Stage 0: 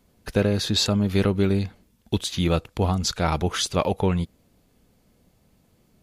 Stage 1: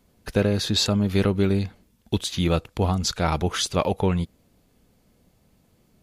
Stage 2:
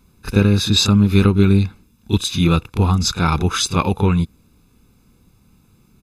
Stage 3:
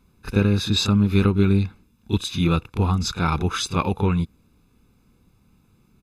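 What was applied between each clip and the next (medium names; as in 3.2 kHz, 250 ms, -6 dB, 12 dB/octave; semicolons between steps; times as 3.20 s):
no audible change
comb 0.8 ms, depth 72%; on a send: reverse echo 30 ms -9.5 dB; on the sum: trim +3.5 dB
tone controls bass -1 dB, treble -5 dB; trim -4 dB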